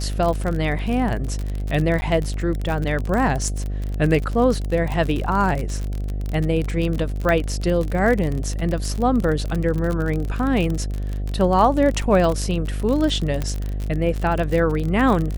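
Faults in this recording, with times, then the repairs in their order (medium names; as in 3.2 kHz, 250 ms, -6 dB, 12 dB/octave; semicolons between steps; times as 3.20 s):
buzz 50 Hz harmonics 15 -25 dBFS
crackle 40 per s -23 dBFS
2.01–2.02 s: dropout 10 ms
7.29 s: pop -10 dBFS
13.42 s: pop -12 dBFS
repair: de-click; de-hum 50 Hz, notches 15; interpolate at 2.01 s, 10 ms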